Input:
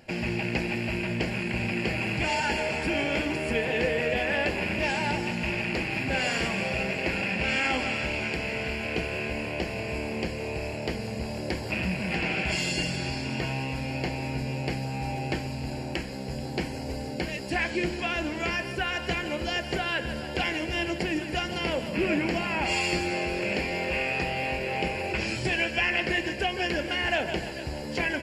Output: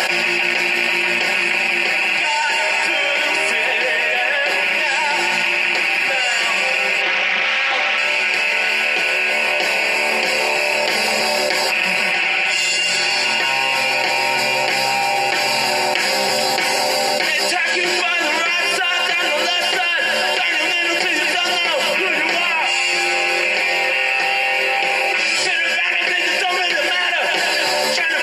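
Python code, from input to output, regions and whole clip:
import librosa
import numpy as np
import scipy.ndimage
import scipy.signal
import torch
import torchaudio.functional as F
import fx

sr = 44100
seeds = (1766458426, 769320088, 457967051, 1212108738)

y = fx.chain(x, sr, fx.tube_stage(drive_db=27.0, bias=0.6),
    fx.bandpass_edges(low_hz=100.0, high_hz=3700.0),
    fx.doppler_dist(depth_ms=0.3), at=(7.01, 7.98))
y = scipy.signal.sosfilt(scipy.signal.butter(2, 830.0, 'highpass', fs=sr, output='sos'), y)
y = y + 0.65 * np.pad(y, (int(5.4 * sr / 1000.0), 0))[:len(y)]
y = fx.env_flatten(y, sr, amount_pct=100)
y = y * 10.0 ** (4.0 / 20.0)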